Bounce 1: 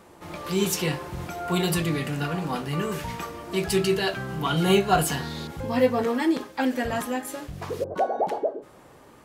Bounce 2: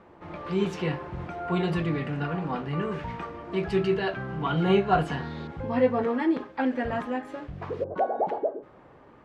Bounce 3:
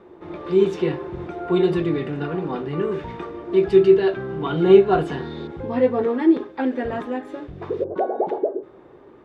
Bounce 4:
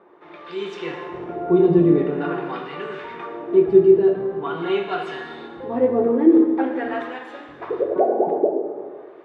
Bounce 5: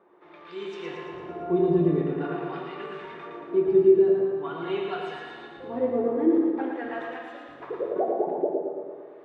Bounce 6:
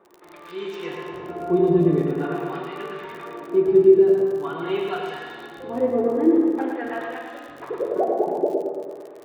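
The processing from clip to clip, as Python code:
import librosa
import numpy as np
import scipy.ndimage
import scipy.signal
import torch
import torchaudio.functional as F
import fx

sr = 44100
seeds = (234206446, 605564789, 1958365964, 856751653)

y1 = scipy.signal.sosfilt(scipy.signal.butter(2, 2200.0, 'lowpass', fs=sr, output='sos'), x)
y1 = y1 * librosa.db_to_amplitude(-1.5)
y2 = fx.small_body(y1, sr, hz=(370.0, 3600.0), ring_ms=30, db=13)
y3 = fx.rider(y2, sr, range_db=10, speed_s=2.0)
y3 = fx.filter_lfo_bandpass(y3, sr, shape='sine', hz=0.45, low_hz=300.0, high_hz=2700.0, q=0.72)
y3 = fx.rev_plate(y3, sr, seeds[0], rt60_s=1.7, hf_ratio=0.8, predelay_ms=0, drr_db=3.0)
y4 = fx.echo_feedback(y3, sr, ms=113, feedback_pct=57, wet_db=-5.0)
y4 = y4 * librosa.db_to_amplitude(-8.0)
y5 = fx.dmg_crackle(y4, sr, seeds[1], per_s=53.0, level_db=-38.0)
y5 = y5 * librosa.db_to_amplitude(4.0)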